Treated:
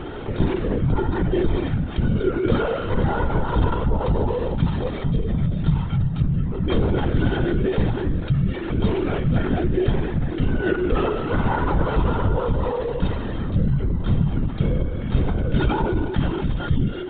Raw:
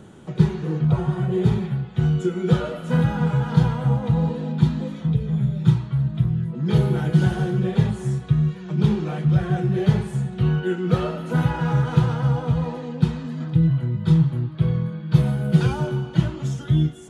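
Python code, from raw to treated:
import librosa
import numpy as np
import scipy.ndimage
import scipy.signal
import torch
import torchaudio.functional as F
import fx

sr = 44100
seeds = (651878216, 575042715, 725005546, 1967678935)

y = x + 0.98 * np.pad(x, (int(2.2 * sr / 1000.0), 0))[:len(x)]
y = fx.lpc_vocoder(y, sr, seeds[0], excitation='whisper', order=16)
y = fx.env_flatten(y, sr, amount_pct=50)
y = y * 10.0 ** (-5.0 / 20.0)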